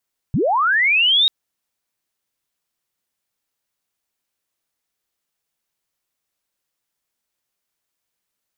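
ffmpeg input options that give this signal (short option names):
-f lavfi -i "aevalsrc='pow(10,(-15+3.5*t/0.94)/20)*sin(2*PI*(100*t+3700*t*t/(2*0.94)))':d=0.94:s=44100"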